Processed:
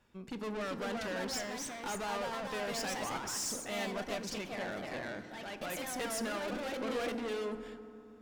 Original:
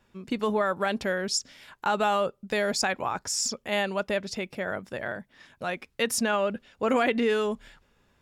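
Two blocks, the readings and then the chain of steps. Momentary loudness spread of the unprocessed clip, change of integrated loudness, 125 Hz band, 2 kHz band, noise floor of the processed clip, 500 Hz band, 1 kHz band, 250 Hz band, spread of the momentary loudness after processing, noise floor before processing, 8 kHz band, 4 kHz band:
10 LU, -9.5 dB, -8.0 dB, -9.5 dB, -53 dBFS, -10.5 dB, -10.5 dB, -9.0 dB, 7 LU, -68 dBFS, -7.5 dB, -8.5 dB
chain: tube stage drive 33 dB, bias 0.4; FDN reverb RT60 2.8 s, low-frequency decay 1.4×, high-frequency decay 0.35×, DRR 9 dB; echoes that change speed 0.428 s, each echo +2 st, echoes 2; gain -3.5 dB

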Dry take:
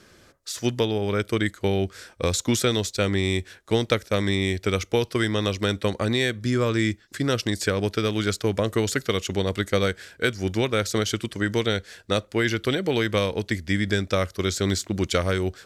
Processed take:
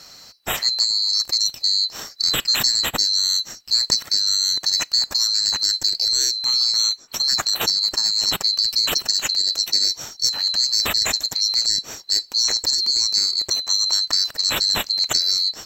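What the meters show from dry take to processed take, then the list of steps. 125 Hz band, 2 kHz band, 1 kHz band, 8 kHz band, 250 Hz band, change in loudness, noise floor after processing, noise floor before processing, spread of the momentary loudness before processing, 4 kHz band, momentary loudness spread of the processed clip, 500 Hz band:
-18.0 dB, -3.5 dB, -2.5 dB, +12.0 dB, -17.5 dB, +7.0 dB, -45 dBFS, -55 dBFS, 4 LU, +15.0 dB, 4 LU, -15.5 dB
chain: band-swap scrambler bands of 4000 Hz; in parallel at -3 dB: negative-ratio compressor -31 dBFS, ratio -1; on the sum: gain +1.5 dB

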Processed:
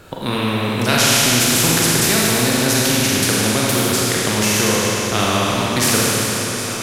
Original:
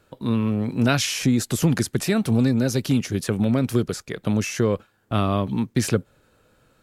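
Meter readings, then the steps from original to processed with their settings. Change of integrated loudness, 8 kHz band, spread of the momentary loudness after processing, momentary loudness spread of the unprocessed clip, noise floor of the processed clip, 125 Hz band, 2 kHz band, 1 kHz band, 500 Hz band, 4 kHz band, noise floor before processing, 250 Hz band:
+7.5 dB, +16.0 dB, 7 LU, 5 LU, -24 dBFS, +1.5 dB, +13.0 dB, +11.0 dB, +6.0 dB, +14.5 dB, -63 dBFS, +2.0 dB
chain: thinning echo 0.758 s, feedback 73%, level -18.5 dB; Schroeder reverb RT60 2.3 s, combs from 33 ms, DRR -4.5 dB; spectral compressor 2:1; gain +1 dB

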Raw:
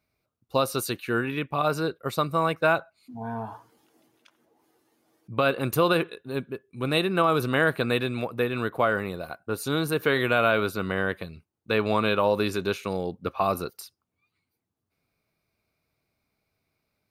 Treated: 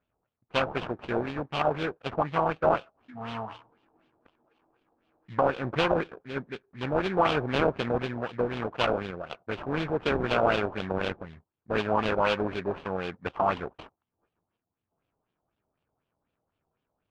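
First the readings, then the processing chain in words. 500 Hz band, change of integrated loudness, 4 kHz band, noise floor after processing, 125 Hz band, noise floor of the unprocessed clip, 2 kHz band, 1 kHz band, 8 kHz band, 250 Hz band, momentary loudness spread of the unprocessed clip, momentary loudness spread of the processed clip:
-2.5 dB, -3.0 dB, -3.5 dB, under -85 dBFS, -4.0 dB, -82 dBFS, -5.0 dB, -1.0 dB, under -15 dB, -3.5 dB, 12 LU, 12 LU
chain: sample-rate reducer 2000 Hz, jitter 20%; LFO low-pass sine 4 Hz 750–3300 Hz; gain -4.5 dB

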